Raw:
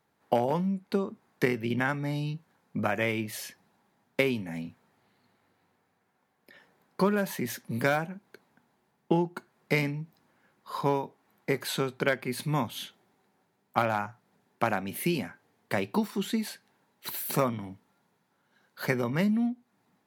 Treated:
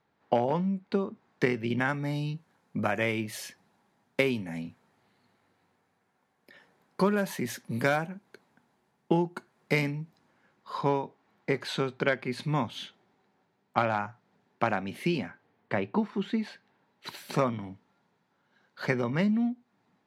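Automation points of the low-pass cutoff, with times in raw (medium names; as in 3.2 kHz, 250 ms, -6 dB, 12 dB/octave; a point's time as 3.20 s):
1.10 s 4.5 kHz
2.12 s 11 kHz
9.88 s 11 kHz
10.90 s 5.2 kHz
15.06 s 5.2 kHz
15.95 s 2.1 kHz
17.18 s 5.3 kHz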